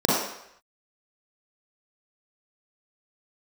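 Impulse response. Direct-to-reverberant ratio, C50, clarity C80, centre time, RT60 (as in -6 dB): -6.5 dB, -2.5 dB, 2.5 dB, 75 ms, 0.75 s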